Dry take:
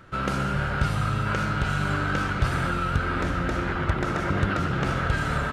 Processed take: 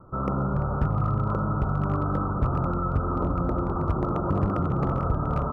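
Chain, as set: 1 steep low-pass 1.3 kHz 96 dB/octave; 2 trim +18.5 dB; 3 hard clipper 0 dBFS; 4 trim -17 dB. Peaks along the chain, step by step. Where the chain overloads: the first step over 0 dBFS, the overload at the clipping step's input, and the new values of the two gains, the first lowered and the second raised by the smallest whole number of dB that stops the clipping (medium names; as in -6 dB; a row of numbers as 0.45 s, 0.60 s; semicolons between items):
-11.0 dBFS, +7.5 dBFS, 0.0 dBFS, -17.0 dBFS; step 2, 7.5 dB; step 2 +10.5 dB, step 4 -9 dB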